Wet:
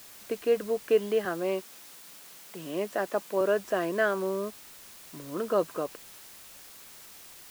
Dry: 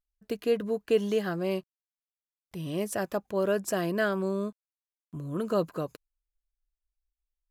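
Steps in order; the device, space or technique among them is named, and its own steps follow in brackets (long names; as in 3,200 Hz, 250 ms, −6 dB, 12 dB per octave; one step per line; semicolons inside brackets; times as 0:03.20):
wax cylinder (band-pass filter 330–2,600 Hz; tape wow and flutter 20 cents; white noise bed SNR 18 dB)
0:01.25–0:03.41: high-pass filter 130 Hz 24 dB per octave
level +2.5 dB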